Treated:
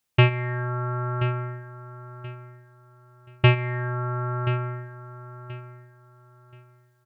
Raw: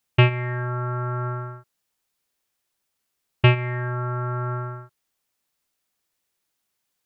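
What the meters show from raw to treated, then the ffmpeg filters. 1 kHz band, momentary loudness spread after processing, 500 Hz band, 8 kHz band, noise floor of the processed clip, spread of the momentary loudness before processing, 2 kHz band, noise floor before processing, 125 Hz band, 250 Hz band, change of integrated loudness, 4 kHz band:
−1.0 dB, 21 LU, −0.5 dB, can't be measured, −61 dBFS, 14 LU, −1.0 dB, −78 dBFS, −0.5 dB, −0.5 dB, −1.0 dB, −1.0 dB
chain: -af "aecho=1:1:1029|2058|3087:0.211|0.0528|0.0132,volume=-1dB"

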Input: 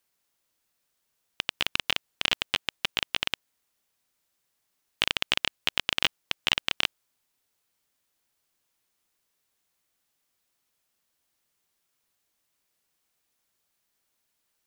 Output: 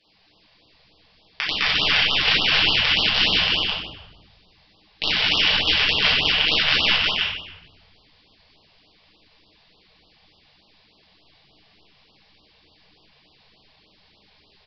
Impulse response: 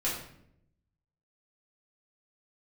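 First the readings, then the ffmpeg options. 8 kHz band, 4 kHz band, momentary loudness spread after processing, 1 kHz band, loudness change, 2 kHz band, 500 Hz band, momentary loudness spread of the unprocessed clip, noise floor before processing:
can't be measured, +11.0 dB, 9 LU, +9.5 dB, +10.5 dB, +11.0 dB, +10.0 dB, 5 LU, −78 dBFS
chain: -filter_complex "[0:a]equalizer=frequency=1400:width=2.2:gain=-11.5,alimiter=limit=-13dB:level=0:latency=1,aecho=1:1:64|134|207|358:0.15|0.141|0.708|0.531,aresample=11025,aeval=exprs='0.224*sin(PI/2*3.98*val(0)/0.224)':channel_layout=same,aresample=44100[link_01];[1:a]atrim=start_sample=2205,asetrate=26460,aresample=44100[link_02];[link_01][link_02]afir=irnorm=-1:irlink=0,afftfilt=real='re*(1-between(b*sr/1024,270*pow(2000/270,0.5+0.5*sin(2*PI*3.4*pts/sr))/1.41,270*pow(2000/270,0.5+0.5*sin(2*PI*3.4*pts/sr))*1.41))':imag='im*(1-between(b*sr/1024,270*pow(2000/270,0.5+0.5*sin(2*PI*3.4*pts/sr))/1.41,270*pow(2000/270,0.5+0.5*sin(2*PI*3.4*pts/sr))*1.41))':win_size=1024:overlap=0.75,volume=-1dB"

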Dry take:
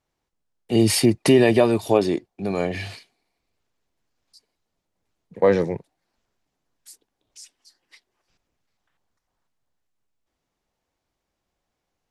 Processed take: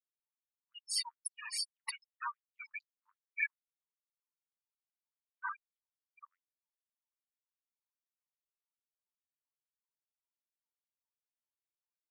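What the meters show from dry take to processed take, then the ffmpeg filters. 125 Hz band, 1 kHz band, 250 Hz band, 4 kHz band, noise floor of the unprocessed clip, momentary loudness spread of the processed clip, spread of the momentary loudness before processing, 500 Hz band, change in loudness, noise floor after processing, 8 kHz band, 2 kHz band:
below −40 dB, −15.5 dB, below −40 dB, −11.0 dB, −80 dBFS, 14 LU, 12 LU, below −40 dB, −20.0 dB, below −85 dBFS, −11.5 dB, −9.5 dB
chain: -af "asoftclip=type=tanh:threshold=-15.5dB,afftfilt=real='re*gte(hypot(re,im),0.0891)':imag='im*gte(hypot(re,im),0.0891)':win_size=1024:overlap=0.75,aecho=1:1:628:0.562,dynaudnorm=framelen=480:gausssize=5:maxgain=3dB,tremolo=f=1.7:d=0.87,aeval=exprs='val(0)+0.00501*(sin(2*PI*60*n/s)+sin(2*PI*2*60*n/s)/2+sin(2*PI*3*60*n/s)/3+sin(2*PI*4*60*n/s)/4+sin(2*PI*5*60*n/s)/5)':channel_layout=same,aecho=1:1:0.9:0.33,areverse,acompressor=threshold=-36dB:ratio=10,areverse,afftfilt=real='re*gte(b*sr/1024,890*pow(5300/890,0.5+0.5*sin(2*PI*2.5*pts/sr)))':imag='im*gte(b*sr/1024,890*pow(5300/890,0.5+0.5*sin(2*PI*2.5*pts/sr)))':win_size=1024:overlap=0.75,volume=13.5dB"

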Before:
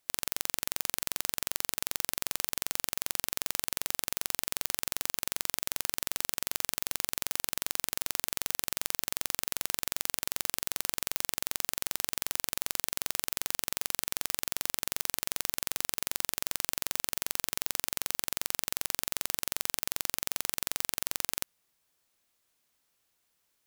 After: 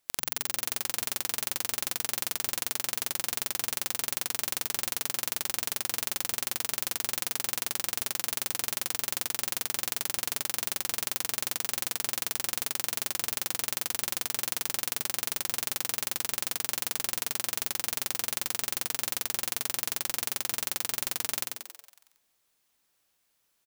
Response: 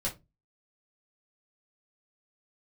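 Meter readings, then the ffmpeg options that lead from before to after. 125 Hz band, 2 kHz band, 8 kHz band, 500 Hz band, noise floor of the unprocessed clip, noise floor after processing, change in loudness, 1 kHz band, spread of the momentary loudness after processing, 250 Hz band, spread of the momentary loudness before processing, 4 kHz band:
+1.0 dB, +2.0 dB, +2.0 dB, +2.0 dB, −76 dBFS, −74 dBFS, +2.0 dB, +2.0 dB, 0 LU, +2.0 dB, 0 LU, +2.0 dB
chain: -filter_complex "[0:a]asplit=9[link_01][link_02][link_03][link_04][link_05][link_06][link_07][link_08][link_09];[link_02]adelay=92,afreqshift=110,volume=-4dB[link_10];[link_03]adelay=184,afreqshift=220,volume=-8.6dB[link_11];[link_04]adelay=276,afreqshift=330,volume=-13.2dB[link_12];[link_05]adelay=368,afreqshift=440,volume=-17.7dB[link_13];[link_06]adelay=460,afreqshift=550,volume=-22.3dB[link_14];[link_07]adelay=552,afreqshift=660,volume=-26.9dB[link_15];[link_08]adelay=644,afreqshift=770,volume=-31.5dB[link_16];[link_09]adelay=736,afreqshift=880,volume=-36.1dB[link_17];[link_01][link_10][link_11][link_12][link_13][link_14][link_15][link_16][link_17]amix=inputs=9:normalize=0"

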